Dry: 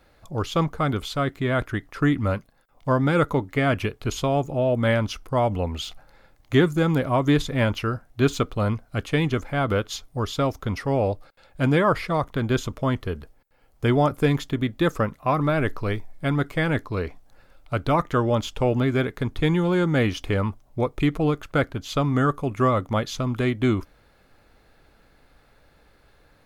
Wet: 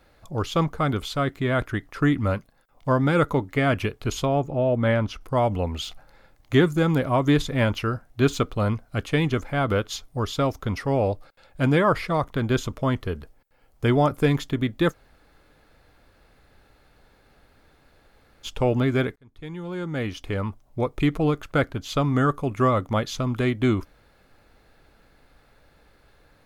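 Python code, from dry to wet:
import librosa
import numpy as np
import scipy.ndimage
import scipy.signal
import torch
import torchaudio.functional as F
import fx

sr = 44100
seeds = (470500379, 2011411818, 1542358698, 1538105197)

y = fx.high_shelf(x, sr, hz=3900.0, db=-11.0, at=(4.25, 5.21))
y = fx.edit(y, sr, fx.room_tone_fill(start_s=14.92, length_s=3.53, crossfade_s=0.04),
    fx.fade_in_span(start_s=19.16, length_s=1.9), tone=tone)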